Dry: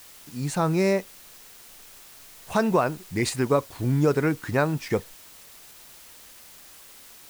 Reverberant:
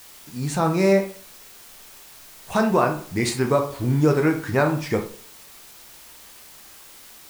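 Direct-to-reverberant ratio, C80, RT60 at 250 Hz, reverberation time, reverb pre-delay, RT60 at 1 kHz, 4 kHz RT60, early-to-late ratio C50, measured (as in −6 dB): 3.5 dB, 14.0 dB, 0.45 s, 0.50 s, 10 ms, 0.50 s, 0.30 s, 9.5 dB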